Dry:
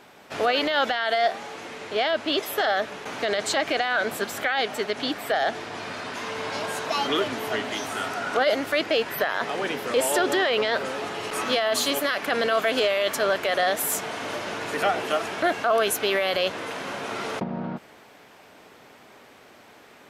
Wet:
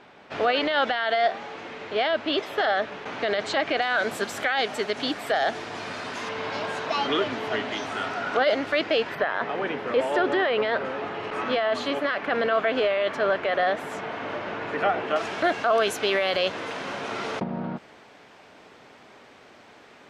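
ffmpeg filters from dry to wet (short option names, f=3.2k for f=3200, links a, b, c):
-af "asetnsamples=n=441:p=0,asendcmd='3.82 lowpass f 9000;6.29 lowpass f 4300;9.15 lowpass f 2400;15.16 lowpass f 6400',lowpass=3.8k"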